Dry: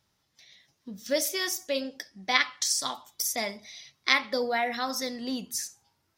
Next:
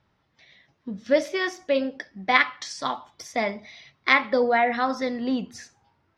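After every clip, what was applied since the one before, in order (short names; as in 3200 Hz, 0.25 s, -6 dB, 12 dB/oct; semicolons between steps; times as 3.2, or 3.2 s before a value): LPF 2200 Hz 12 dB/oct; gain +7.5 dB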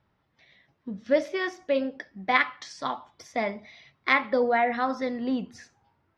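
high shelf 4600 Hz -10 dB; gain -2 dB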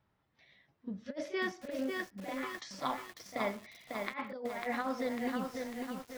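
pre-echo 35 ms -18.5 dB; negative-ratio compressor -27 dBFS, ratio -0.5; lo-fi delay 0.548 s, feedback 55%, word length 7-bit, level -3.5 dB; gain -8.5 dB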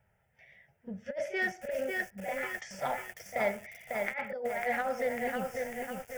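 fixed phaser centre 1100 Hz, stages 6; in parallel at -9.5 dB: hard clip -37.5 dBFS, distortion -10 dB; on the sum: gain +5 dB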